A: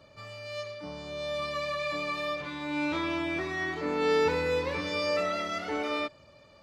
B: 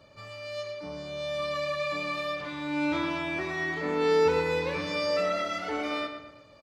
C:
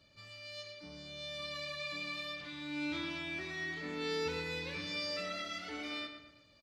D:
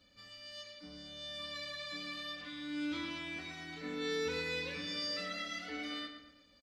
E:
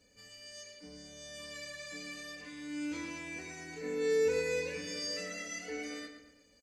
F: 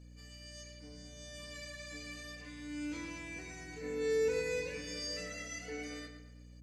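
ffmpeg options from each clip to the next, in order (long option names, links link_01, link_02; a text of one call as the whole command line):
ffmpeg -i in.wav -filter_complex "[0:a]asplit=2[link_01][link_02];[link_02]adelay=115,lowpass=frequency=3500:poles=1,volume=-7dB,asplit=2[link_03][link_04];[link_04]adelay=115,lowpass=frequency=3500:poles=1,volume=0.45,asplit=2[link_05][link_06];[link_06]adelay=115,lowpass=frequency=3500:poles=1,volume=0.45,asplit=2[link_07][link_08];[link_08]adelay=115,lowpass=frequency=3500:poles=1,volume=0.45,asplit=2[link_09][link_10];[link_10]adelay=115,lowpass=frequency=3500:poles=1,volume=0.45[link_11];[link_01][link_03][link_05][link_07][link_09][link_11]amix=inputs=6:normalize=0" out.wav
ffmpeg -i in.wav -af "equalizer=frequency=125:width_type=o:width=1:gain=-3,equalizer=frequency=500:width_type=o:width=1:gain=-8,equalizer=frequency=1000:width_type=o:width=1:gain=-9,equalizer=frequency=4000:width_type=o:width=1:gain=5,volume=-6.5dB" out.wav
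ffmpeg -i in.wav -af "aecho=1:1:4:0.73,volume=-2dB" out.wav
ffmpeg -i in.wav -af "superequalizer=7b=2.82:10b=0.447:13b=0.316:15b=3.55:16b=2.51" out.wav
ffmpeg -i in.wav -af "aeval=exprs='val(0)+0.00316*(sin(2*PI*60*n/s)+sin(2*PI*2*60*n/s)/2+sin(2*PI*3*60*n/s)/3+sin(2*PI*4*60*n/s)/4+sin(2*PI*5*60*n/s)/5)':channel_layout=same,volume=-2.5dB" out.wav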